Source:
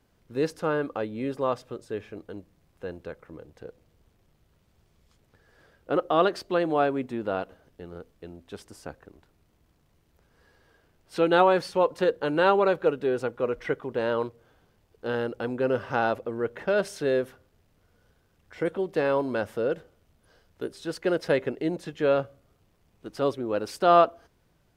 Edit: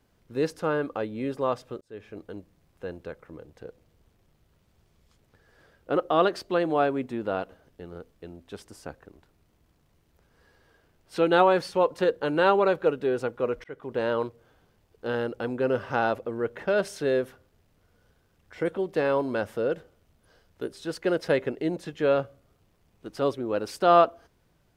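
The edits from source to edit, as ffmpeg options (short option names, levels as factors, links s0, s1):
-filter_complex "[0:a]asplit=3[s0][s1][s2];[s0]atrim=end=1.81,asetpts=PTS-STARTPTS,afade=t=out:st=1.806:d=0.004:c=hsin[s3];[s1]atrim=start=1.81:end=13.64,asetpts=PTS-STARTPTS,afade=t=in:d=0.38,afade=t=out:st=11.826:d=0.004:c=hsin[s4];[s2]atrim=start=13.64,asetpts=PTS-STARTPTS,afade=t=in:d=0.31[s5];[s3][s4][s5]concat=n=3:v=0:a=1"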